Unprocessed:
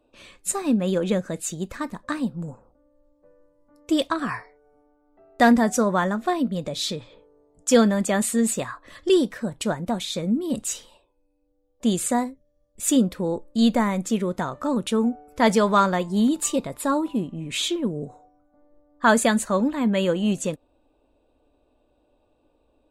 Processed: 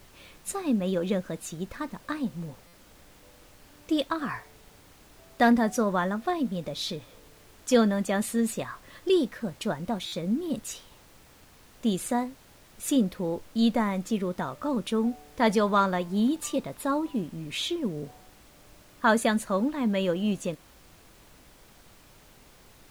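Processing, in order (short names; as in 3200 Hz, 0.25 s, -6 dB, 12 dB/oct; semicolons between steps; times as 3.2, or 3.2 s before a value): bell 7700 Hz -8.5 dB 0.41 oct; added noise pink -50 dBFS; stuck buffer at 2.67/10.06, samples 256, times 10; gain -4.5 dB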